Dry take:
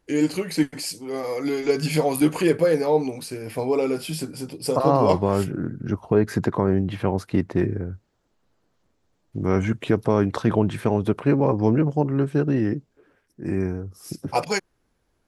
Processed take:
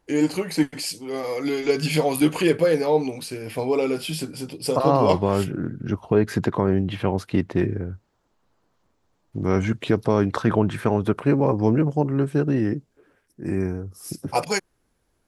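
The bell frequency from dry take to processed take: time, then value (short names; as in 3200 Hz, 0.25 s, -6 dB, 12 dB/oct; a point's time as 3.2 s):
bell +5.5 dB 0.86 oct
850 Hz
from 0.69 s 3100 Hz
from 7.92 s 1000 Hz
from 9.43 s 4300 Hz
from 10.34 s 1400 Hz
from 11.19 s 10000 Hz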